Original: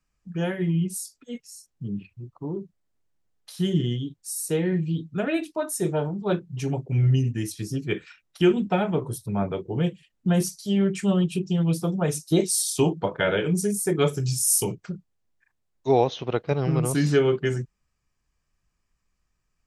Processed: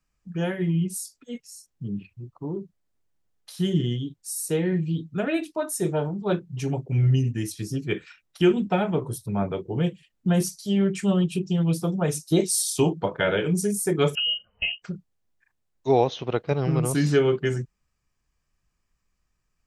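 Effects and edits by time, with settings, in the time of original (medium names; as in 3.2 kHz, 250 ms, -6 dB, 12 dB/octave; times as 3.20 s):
14.15–14.82 s: frequency inversion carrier 3 kHz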